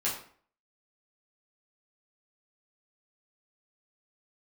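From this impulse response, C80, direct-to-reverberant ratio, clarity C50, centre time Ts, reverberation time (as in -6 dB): 10.0 dB, -8.0 dB, 6.5 dB, 32 ms, 0.50 s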